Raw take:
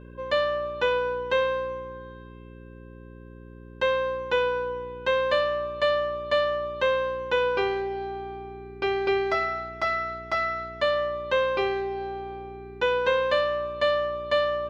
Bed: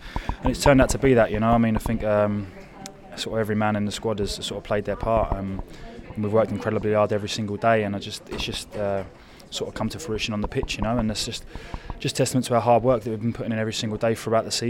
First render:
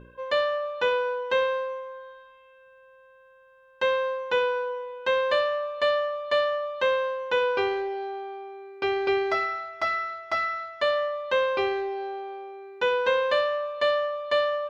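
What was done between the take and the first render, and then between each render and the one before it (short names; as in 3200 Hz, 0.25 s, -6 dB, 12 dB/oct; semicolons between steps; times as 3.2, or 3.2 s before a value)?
de-hum 60 Hz, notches 11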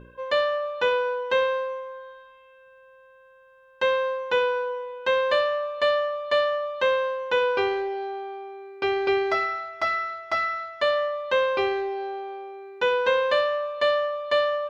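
gain +1.5 dB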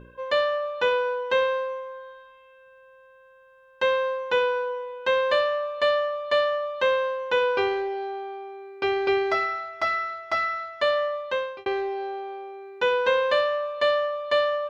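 11.15–11.66 fade out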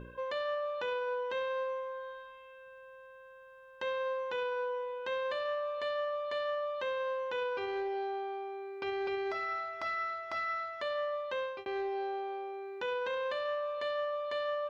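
compressor 1.5:1, threshold -41 dBFS, peak gain reduction 8.5 dB; limiter -28.5 dBFS, peak gain reduction 9 dB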